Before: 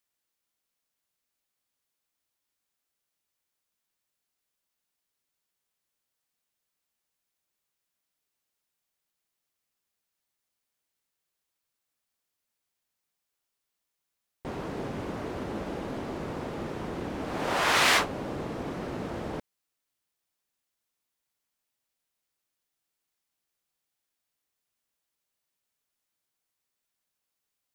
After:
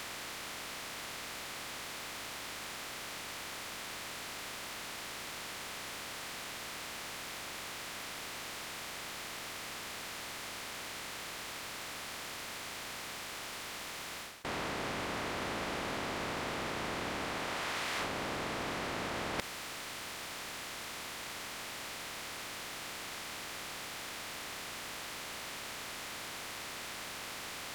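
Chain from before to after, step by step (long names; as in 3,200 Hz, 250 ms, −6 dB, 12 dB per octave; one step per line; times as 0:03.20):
compressor on every frequency bin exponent 0.4
reversed playback
downward compressor 10 to 1, threshold −37 dBFS, peak gain reduction 20.5 dB
reversed playback
level +2.5 dB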